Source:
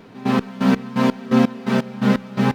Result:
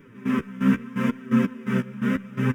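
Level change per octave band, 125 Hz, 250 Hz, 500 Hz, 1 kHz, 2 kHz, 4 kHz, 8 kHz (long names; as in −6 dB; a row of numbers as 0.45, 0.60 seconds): −3.5 dB, −4.5 dB, −9.0 dB, −10.0 dB, −4.0 dB, −11.0 dB, can't be measured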